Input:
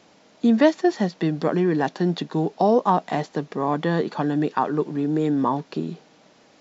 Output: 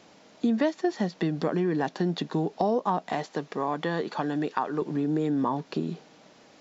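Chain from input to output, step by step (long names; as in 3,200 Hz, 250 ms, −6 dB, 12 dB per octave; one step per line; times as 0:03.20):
0:03.13–0:04.82: low-shelf EQ 330 Hz −8 dB
downward compressor 2.5 to 1, threshold −25 dBFS, peak gain reduction 10 dB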